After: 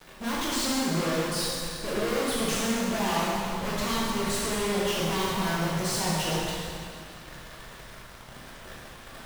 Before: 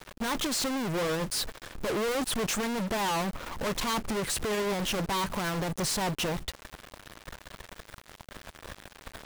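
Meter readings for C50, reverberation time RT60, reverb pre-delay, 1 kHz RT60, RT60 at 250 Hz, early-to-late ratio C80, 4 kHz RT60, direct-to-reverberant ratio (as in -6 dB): -2.5 dB, 2.2 s, 6 ms, 2.2 s, 2.2 s, -1.0 dB, 2.1 s, -7.0 dB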